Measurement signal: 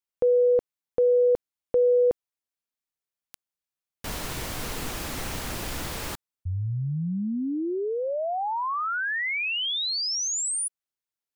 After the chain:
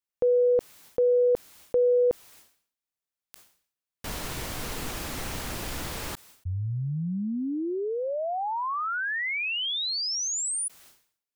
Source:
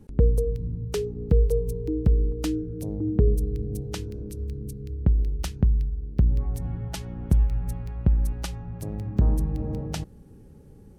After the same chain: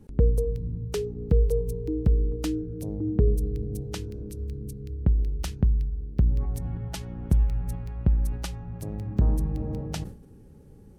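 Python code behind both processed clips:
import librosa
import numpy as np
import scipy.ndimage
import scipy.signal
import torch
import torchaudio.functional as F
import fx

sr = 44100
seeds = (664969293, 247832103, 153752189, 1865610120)

y = fx.sustainer(x, sr, db_per_s=110.0)
y = y * librosa.db_to_amplitude(-1.5)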